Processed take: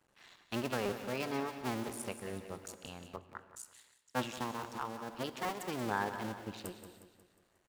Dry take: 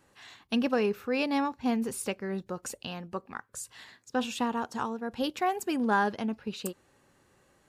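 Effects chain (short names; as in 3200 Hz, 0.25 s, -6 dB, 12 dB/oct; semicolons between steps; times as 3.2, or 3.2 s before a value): cycle switcher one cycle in 2, muted; feedback echo 0.18 s, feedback 50%, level -11 dB; non-linear reverb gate 0.36 s flat, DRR 11.5 dB; 3.16–4.38 three-band expander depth 70%; gain -6.5 dB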